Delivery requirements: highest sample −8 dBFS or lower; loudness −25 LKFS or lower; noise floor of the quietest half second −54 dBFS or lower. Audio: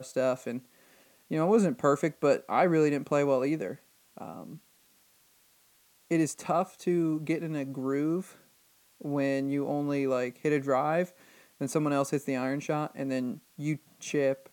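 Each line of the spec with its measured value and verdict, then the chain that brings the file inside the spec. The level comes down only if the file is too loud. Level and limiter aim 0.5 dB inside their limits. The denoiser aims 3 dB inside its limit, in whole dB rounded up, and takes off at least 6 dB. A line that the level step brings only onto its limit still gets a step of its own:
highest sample −11.5 dBFS: in spec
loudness −29.5 LKFS: in spec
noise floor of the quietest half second −64 dBFS: in spec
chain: no processing needed

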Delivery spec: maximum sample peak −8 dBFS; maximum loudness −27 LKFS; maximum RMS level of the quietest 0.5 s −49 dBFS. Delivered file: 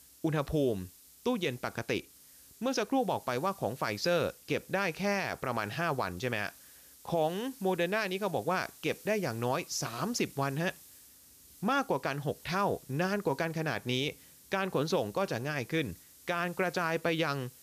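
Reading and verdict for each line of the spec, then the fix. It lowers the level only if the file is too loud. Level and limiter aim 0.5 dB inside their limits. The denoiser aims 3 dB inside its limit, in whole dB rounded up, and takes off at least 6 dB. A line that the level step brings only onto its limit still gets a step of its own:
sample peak −19.0 dBFS: in spec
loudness −32.5 LKFS: in spec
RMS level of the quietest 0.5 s −57 dBFS: in spec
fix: no processing needed

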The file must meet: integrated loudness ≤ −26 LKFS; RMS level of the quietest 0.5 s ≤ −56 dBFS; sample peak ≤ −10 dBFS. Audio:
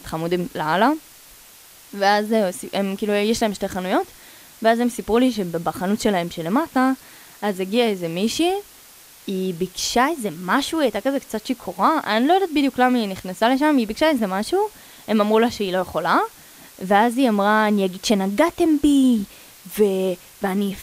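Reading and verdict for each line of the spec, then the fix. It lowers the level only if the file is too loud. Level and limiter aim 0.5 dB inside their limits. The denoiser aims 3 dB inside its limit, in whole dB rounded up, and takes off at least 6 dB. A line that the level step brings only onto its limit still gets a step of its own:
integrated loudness −20.5 LKFS: out of spec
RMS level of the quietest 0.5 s −46 dBFS: out of spec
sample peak −3.5 dBFS: out of spec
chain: broadband denoise 7 dB, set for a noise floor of −46 dBFS
level −6 dB
brickwall limiter −10.5 dBFS

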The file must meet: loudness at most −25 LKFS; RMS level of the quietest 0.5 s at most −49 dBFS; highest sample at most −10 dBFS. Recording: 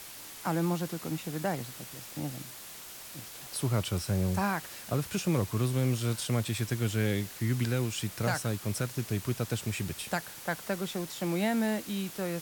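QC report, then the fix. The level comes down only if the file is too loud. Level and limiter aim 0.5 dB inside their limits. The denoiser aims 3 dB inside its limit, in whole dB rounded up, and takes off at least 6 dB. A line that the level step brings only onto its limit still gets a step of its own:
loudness −32.0 LKFS: in spec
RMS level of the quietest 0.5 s −46 dBFS: out of spec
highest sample −17.0 dBFS: in spec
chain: broadband denoise 6 dB, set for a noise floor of −46 dBFS

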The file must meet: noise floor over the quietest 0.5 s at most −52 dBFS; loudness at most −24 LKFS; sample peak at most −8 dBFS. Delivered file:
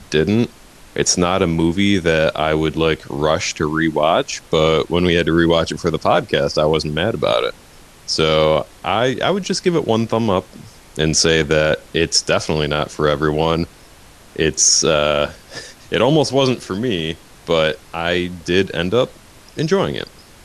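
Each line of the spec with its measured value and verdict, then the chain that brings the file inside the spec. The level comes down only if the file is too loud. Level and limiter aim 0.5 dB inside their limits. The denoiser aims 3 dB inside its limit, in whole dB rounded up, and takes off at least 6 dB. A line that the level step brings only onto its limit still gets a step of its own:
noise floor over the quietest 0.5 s −44 dBFS: out of spec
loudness −17.0 LKFS: out of spec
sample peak −2.5 dBFS: out of spec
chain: broadband denoise 6 dB, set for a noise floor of −44 dBFS
level −7.5 dB

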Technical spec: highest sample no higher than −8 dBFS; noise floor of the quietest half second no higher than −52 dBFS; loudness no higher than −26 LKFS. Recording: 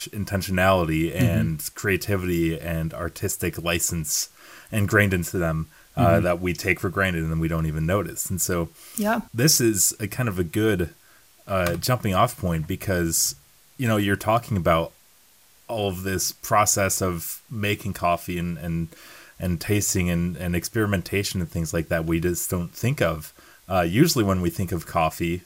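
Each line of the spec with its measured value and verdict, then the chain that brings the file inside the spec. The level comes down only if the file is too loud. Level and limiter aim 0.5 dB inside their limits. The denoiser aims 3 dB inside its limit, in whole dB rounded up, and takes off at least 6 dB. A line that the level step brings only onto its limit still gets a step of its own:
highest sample −3.5 dBFS: out of spec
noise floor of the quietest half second −56 dBFS: in spec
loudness −23.5 LKFS: out of spec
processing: level −3 dB
brickwall limiter −8.5 dBFS

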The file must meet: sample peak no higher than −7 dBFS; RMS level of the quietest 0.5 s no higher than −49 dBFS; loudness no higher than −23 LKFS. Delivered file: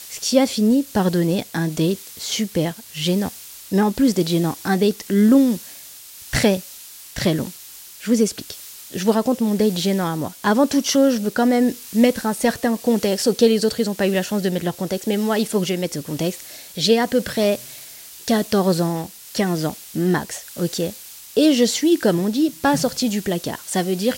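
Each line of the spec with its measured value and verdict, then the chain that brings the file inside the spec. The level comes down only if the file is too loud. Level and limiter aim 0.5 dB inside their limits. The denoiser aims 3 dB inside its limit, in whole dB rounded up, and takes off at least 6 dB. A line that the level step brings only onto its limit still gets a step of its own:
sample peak −3.0 dBFS: out of spec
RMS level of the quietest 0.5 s −40 dBFS: out of spec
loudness −20.0 LKFS: out of spec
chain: broadband denoise 9 dB, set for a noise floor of −40 dBFS
level −3.5 dB
brickwall limiter −7.5 dBFS

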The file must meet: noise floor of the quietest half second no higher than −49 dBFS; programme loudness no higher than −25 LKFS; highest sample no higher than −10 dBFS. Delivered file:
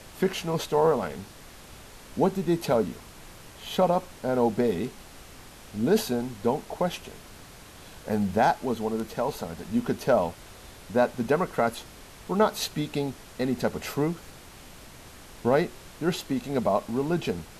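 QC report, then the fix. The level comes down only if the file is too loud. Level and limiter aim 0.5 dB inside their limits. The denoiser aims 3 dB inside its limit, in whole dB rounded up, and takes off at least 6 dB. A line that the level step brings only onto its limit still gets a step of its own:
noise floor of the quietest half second −47 dBFS: out of spec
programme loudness −27.5 LKFS: in spec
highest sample −11.0 dBFS: in spec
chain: broadband denoise 6 dB, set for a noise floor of −47 dBFS

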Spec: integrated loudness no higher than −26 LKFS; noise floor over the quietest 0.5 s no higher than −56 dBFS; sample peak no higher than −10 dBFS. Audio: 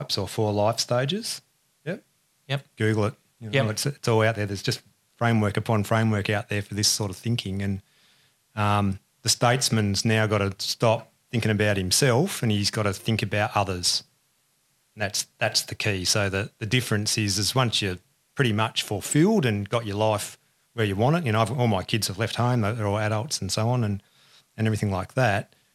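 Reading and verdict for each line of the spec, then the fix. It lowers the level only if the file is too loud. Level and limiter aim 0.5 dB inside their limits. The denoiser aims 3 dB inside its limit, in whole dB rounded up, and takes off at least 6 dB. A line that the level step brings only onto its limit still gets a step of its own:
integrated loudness −24.5 LKFS: out of spec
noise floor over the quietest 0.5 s −68 dBFS: in spec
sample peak −7.0 dBFS: out of spec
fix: level −2 dB
brickwall limiter −10.5 dBFS

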